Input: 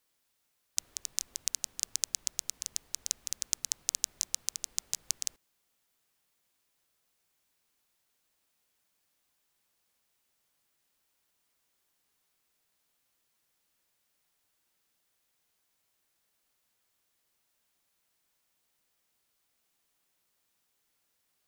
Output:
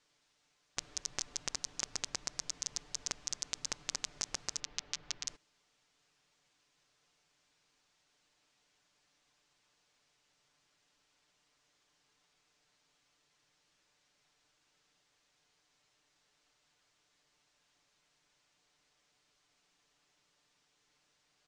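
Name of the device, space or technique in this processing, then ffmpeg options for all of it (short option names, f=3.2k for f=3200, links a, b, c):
synthesiser wavefolder: -filter_complex "[0:a]asplit=3[a][b][c];[a]afade=t=out:st=4.59:d=0.02[d];[b]lowpass=3.5k,afade=t=in:st=4.59:d=0.02,afade=t=out:st=5.26:d=0.02[e];[c]afade=t=in:st=5.26:d=0.02[f];[d][e][f]amix=inputs=3:normalize=0,aecho=1:1:6.8:0.56,aeval=exprs='0.119*(abs(mod(val(0)/0.119+3,4)-2)-1)':c=same,lowpass=f=6.8k:w=0.5412,lowpass=f=6.8k:w=1.3066,volume=5dB"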